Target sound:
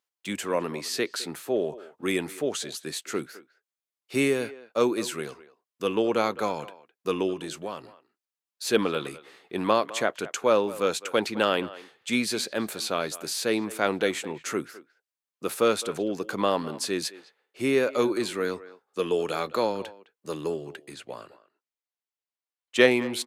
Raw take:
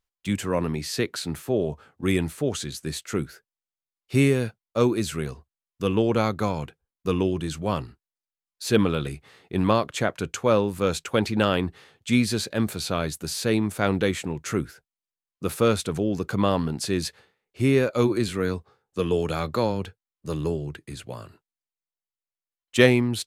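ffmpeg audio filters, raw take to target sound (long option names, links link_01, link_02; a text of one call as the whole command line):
ffmpeg -i in.wav -filter_complex "[0:a]highpass=320,asettb=1/sr,asplit=3[link_01][link_02][link_03];[link_01]atrim=end=7.334[link_04];[link_02]atrim=start=7.33:end=7.84,asetpts=PTS-STARTPTS,afade=type=in:duration=0.004:curve=qsin,afade=type=out:start_time=0.506:duration=0.004:curve=qsin,acompressor=threshold=-31dB:ratio=5[link_05];[link_03]atrim=start=7.836[link_06];[link_04][link_05]acrossfade=duration=0.004:curve1=hsin:curve2=qsin[link_07];[link_07][link_06]acrossfade=duration=0.004:curve1=qsin:curve2=hsin,asettb=1/sr,asplit=3[link_08][link_09][link_10];[link_08]atrim=end=20.944[link_11];[link_09]atrim=start=20.94:end=22.91,asetpts=PTS-STARTPTS,afade=type=in:duration=0.004:curve=qsin,afade=type=out:start_time=1.966:duration=0.004:curve=qsin,highshelf=frequency=8100:gain=-10[link_12];[link_10]atrim=start=22.906[link_13];[link_11][link_12]acrossfade=duration=0.004:curve1=hsin:curve2=qsin[link_14];[link_14][link_13]acrossfade=duration=0.004:curve1=qsin:curve2=hsin,asplit=2[link_15][link_16];[link_16]adelay=210,highpass=300,lowpass=3400,asoftclip=type=hard:threshold=-10dB,volume=-17dB[link_17];[link_15][link_17]amix=inputs=2:normalize=0" out.wav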